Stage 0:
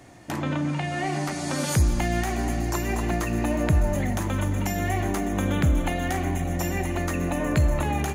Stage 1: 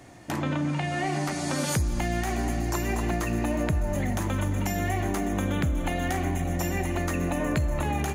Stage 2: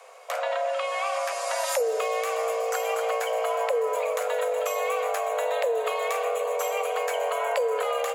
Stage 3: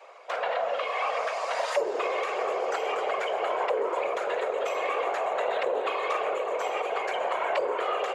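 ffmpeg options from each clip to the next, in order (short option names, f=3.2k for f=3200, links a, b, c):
-af "acompressor=threshold=-22dB:ratio=6"
-af "afreqshift=400"
-af "aeval=exprs='0.224*(cos(1*acos(clip(val(0)/0.224,-1,1)))-cos(1*PI/2))+0.02*(cos(4*acos(clip(val(0)/0.224,-1,1)))-cos(4*PI/2))':c=same,afftfilt=real='hypot(re,im)*cos(2*PI*random(0))':imag='hypot(re,im)*sin(2*PI*random(1))':win_size=512:overlap=0.75,highpass=480,lowpass=3.8k,volume=6dB"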